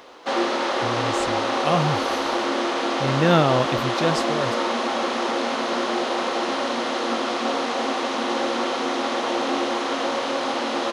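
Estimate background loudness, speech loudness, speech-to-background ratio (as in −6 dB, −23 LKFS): −24.0 LKFS, −24.5 LKFS, −0.5 dB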